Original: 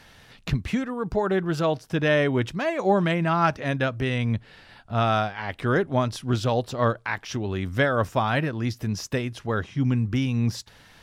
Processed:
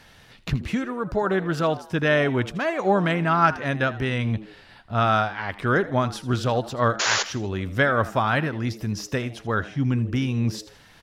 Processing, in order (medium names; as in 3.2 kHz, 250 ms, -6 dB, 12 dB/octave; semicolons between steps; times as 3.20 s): painted sound noise, 6.99–7.23 s, 360–7200 Hz -24 dBFS; frequency-shifting echo 80 ms, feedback 40%, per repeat +100 Hz, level -17 dB; dynamic bell 1.4 kHz, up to +5 dB, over -41 dBFS, Q 2